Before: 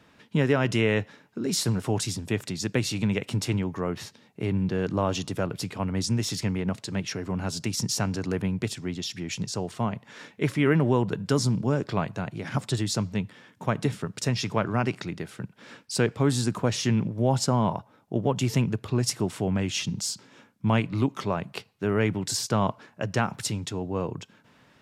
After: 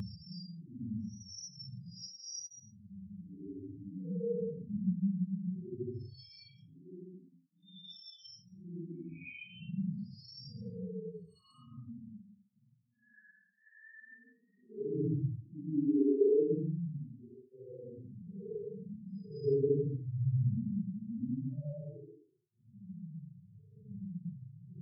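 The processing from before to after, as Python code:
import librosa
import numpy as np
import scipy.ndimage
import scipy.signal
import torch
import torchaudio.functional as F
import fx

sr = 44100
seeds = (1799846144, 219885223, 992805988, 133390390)

y = fx.spec_topn(x, sr, count=2)
y = fx.paulstretch(y, sr, seeds[0], factor=5.1, window_s=0.1, from_s=7.49)
y = fx.flanger_cancel(y, sr, hz=0.2, depth_ms=1.4)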